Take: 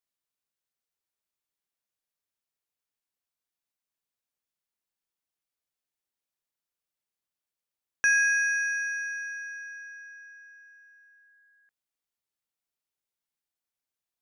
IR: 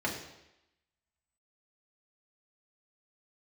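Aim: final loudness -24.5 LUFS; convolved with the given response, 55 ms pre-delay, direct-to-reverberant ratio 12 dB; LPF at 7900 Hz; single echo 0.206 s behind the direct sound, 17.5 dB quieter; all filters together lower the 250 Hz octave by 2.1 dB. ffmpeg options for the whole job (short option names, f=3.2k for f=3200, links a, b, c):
-filter_complex "[0:a]lowpass=7.9k,equalizer=f=250:t=o:g=-3,aecho=1:1:206:0.133,asplit=2[a][b];[1:a]atrim=start_sample=2205,adelay=55[c];[b][c]afir=irnorm=-1:irlink=0,volume=-19.5dB[d];[a][d]amix=inputs=2:normalize=0,volume=1.5dB"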